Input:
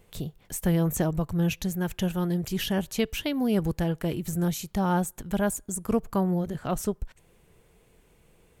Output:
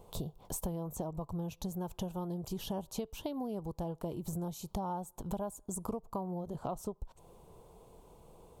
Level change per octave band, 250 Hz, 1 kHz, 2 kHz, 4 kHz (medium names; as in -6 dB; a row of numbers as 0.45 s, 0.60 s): -12.5 dB, -8.0 dB, -22.5 dB, -13.5 dB